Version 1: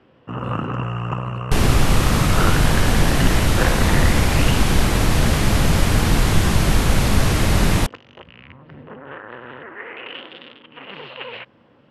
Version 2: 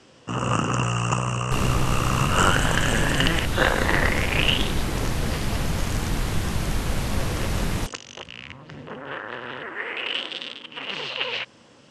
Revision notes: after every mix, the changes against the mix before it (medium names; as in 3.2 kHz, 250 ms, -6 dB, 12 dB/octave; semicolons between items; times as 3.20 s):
first sound: remove distance through air 470 m; second sound -9.0 dB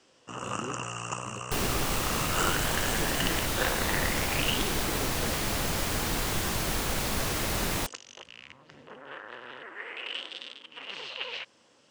first sound -9.5 dB; second sound: remove brick-wall FIR low-pass 13 kHz; master: add tone controls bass -9 dB, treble +4 dB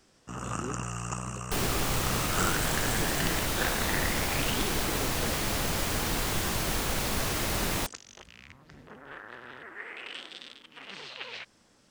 first sound: remove cabinet simulation 140–8800 Hz, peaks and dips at 190 Hz -7 dB, 520 Hz +6 dB, 1 kHz +4 dB, 2.9 kHz +8 dB